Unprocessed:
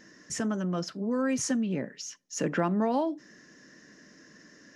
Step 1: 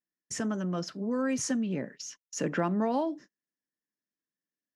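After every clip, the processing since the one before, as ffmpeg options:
-af "agate=range=-43dB:threshold=-44dB:ratio=16:detection=peak,volume=-1.5dB"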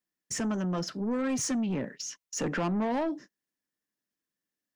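-af "asoftclip=type=tanh:threshold=-29dB,volume=4dB"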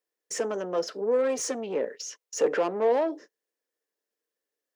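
-af "highpass=f=460:t=q:w=4.9"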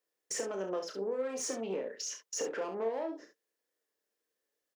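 -filter_complex "[0:a]acompressor=threshold=-35dB:ratio=5,asplit=2[a][b];[b]aecho=0:1:31|67:0.447|0.355[c];[a][c]amix=inputs=2:normalize=0"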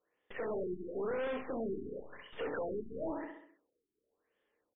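-af "aecho=1:1:66|132|198|264|330|396:0.473|0.241|0.123|0.0628|0.032|0.0163,aeval=exprs='(tanh(141*val(0)+0.25)-tanh(0.25))/141':c=same,afftfilt=real='re*lt(b*sr/1024,410*pow(3700/410,0.5+0.5*sin(2*PI*0.96*pts/sr)))':imag='im*lt(b*sr/1024,410*pow(3700/410,0.5+0.5*sin(2*PI*0.96*pts/sr)))':win_size=1024:overlap=0.75,volume=9dB"

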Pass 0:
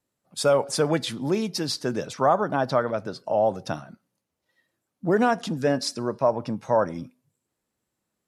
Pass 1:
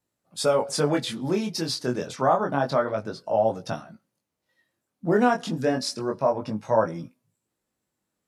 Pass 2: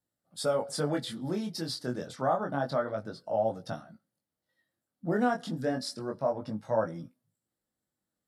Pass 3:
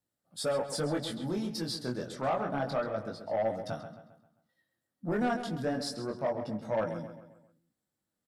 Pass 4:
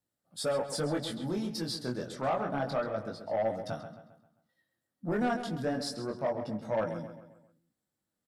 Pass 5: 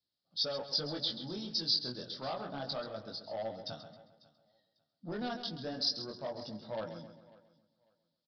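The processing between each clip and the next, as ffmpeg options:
-af "flanger=delay=17.5:depth=7:speed=0.28,volume=2.5dB"
-af "equalizer=f=400:t=o:w=0.33:g=-5,equalizer=f=1k:t=o:w=0.33:g=-6,equalizer=f=2.5k:t=o:w=0.33:g=-11,equalizer=f=6.3k:t=o:w=0.33:g=-7,volume=-5.5dB"
-filter_complex "[0:a]asoftclip=type=tanh:threshold=-23.5dB,asplit=2[a][b];[b]adelay=133,lowpass=f=4.4k:p=1,volume=-10dB,asplit=2[c][d];[d]adelay=133,lowpass=f=4.4k:p=1,volume=0.46,asplit=2[e][f];[f]adelay=133,lowpass=f=4.4k:p=1,volume=0.46,asplit=2[g][h];[h]adelay=133,lowpass=f=4.4k:p=1,volume=0.46,asplit=2[i][j];[j]adelay=133,lowpass=f=4.4k:p=1,volume=0.46[k];[c][e][g][i][k]amix=inputs=5:normalize=0[l];[a][l]amix=inputs=2:normalize=0"
-af anull
-af "aecho=1:1:546|1092:0.075|0.0157,aexciter=amount=5.5:drive=8.7:freq=3.4k,aresample=11025,aresample=44100,volume=-8.5dB"

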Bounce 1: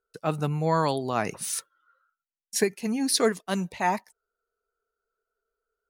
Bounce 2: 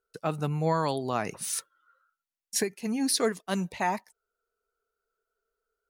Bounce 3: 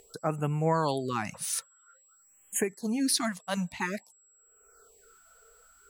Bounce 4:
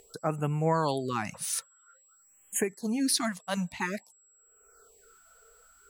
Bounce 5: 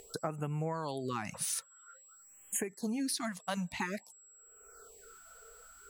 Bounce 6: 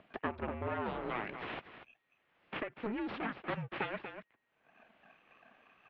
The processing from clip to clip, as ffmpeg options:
-af "alimiter=limit=-15dB:level=0:latency=1:release=493"
-af "acompressor=mode=upward:threshold=-40dB:ratio=2.5,aeval=exprs='val(0)+0.001*sin(2*PI*7700*n/s)':c=same,afftfilt=real='re*(1-between(b*sr/1024,290*pow(4800/290,0.5+0.5*sin(2*PI*0.5*pts/sr))/1.41,290*pow(4800/290,0.5+0.5*sin(2*PI*0.5*pts/sr))*1.41))':imag='im*(1-between(b*sr/1024,290*pow(4800/290,0.5+0.5*sin(2*PI*0.5*pts/sr))/1.41,290*pow(4800/290,0.5+0.5*sin(2*PI*0.5*pts/sr))*1.41))':win_size=1024:overlap=0.75"
-af anull
-af "acompressor=threshold=-36dB:ratio=8,volume=3.5dB"
-filter_complex "[0:a]asplit=2[a][b];[b]adelay=239.1,volume=-8dB,highshelf=f=4k:g=-5.38[c];[a][c]amix=inputs=2:normalize=0,aeval=exprs='abs(val(0))':c=same,highpass=f=350:t=q:w=0.5412,highpass=f=350:t=q:w=1.307,lowpass=f=3.1k:t=q:w=0.5176,lowpass=f=3.1k:t=q:w=0.7071,lowpass=f=3.1k:t=q:w=1.932,afreqshift=-220,volume=4dB"

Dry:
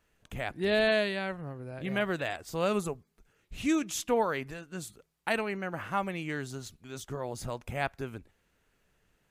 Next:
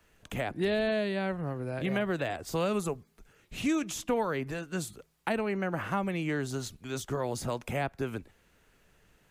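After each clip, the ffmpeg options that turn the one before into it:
-filter_complex "[0:a]acrossover=split=120|450|1100[a][b][c][d];[a]acompressor=threshold=-55dB:ratio=4[e];[b]acompressor=threshold=-38dB:ratio=4[f];[c]acompressor=threshold=-43dB:ratio=4[g];[d]acompressor=threshold=-45dB:ratio=4[h];[e][f][g][h]amix=inputs=4:normalize=0,volume=7dB"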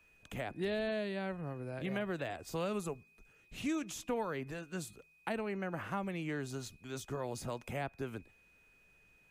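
-af "aeval=exprs='val(0)+0.00126*sin(2*PI*2500*n/s)':c=same,volume=-7dB"

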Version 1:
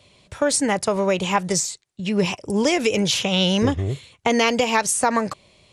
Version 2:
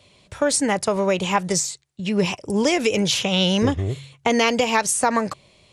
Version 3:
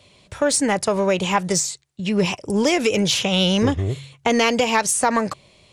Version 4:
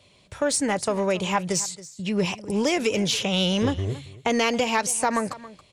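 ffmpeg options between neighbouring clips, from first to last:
-af "bandreject=f=68.73:t=h:w=4,bandreject=f=137.46:t=h:w=4"
-af "acontrast=71,volume=-5dB"
-af "aecho=1:1:275:0.133,volume=-4.5dB"

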